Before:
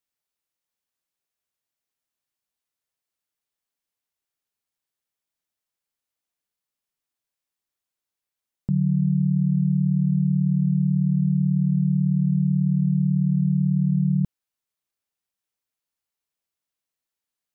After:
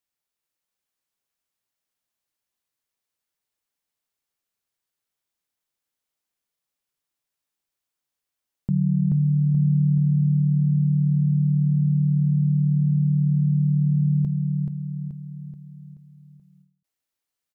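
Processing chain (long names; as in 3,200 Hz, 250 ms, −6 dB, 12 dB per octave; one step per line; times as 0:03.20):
repeating echo 430 ms, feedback 49%, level −3.5 dB
every ending faded ahead of time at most 130 dB per second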